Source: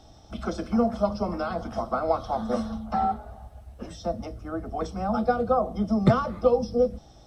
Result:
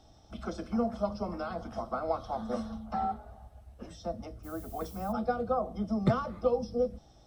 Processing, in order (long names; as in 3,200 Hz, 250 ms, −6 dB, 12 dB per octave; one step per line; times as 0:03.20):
0:04.43–0:05.11: background noise violet −46 dBFS
level −7 dB